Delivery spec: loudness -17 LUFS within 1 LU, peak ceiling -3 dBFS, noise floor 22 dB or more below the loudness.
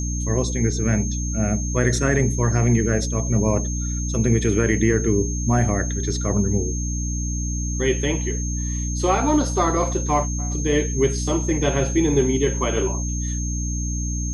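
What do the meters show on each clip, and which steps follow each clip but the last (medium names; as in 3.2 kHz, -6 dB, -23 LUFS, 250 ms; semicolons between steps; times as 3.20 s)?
hum 60 Hz; highest harmonic 300 Hz; hum level -23 dBFS; steady tone 6.4 kHz; tone level -30 dBFS; loudness -21.5 LUFS; peak level -5.0 dBFS; loudness target -17.0 LUFS
-> de-hum 60 Hz, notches 5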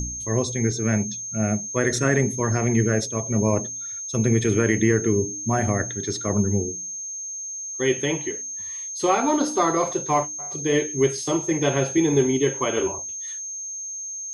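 hum not found; steady tone 6.4 kHz; tone level -30 dBFS
-> band-stop 6.4 kHz, Q 30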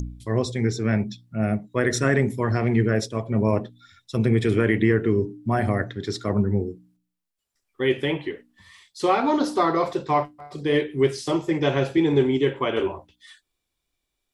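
steady tone not found; loudness -23.5 LUFS; peak level -7.0 dBFS; loudness target -17.0 LUFS
-> trim +6.5 dB; peak limiter -3 dBFS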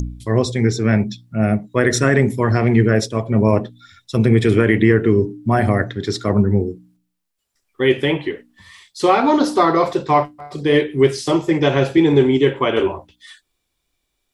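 loudness -17.0 LUFS; peak level -3.0 dBFS; noise floor -74 dBFS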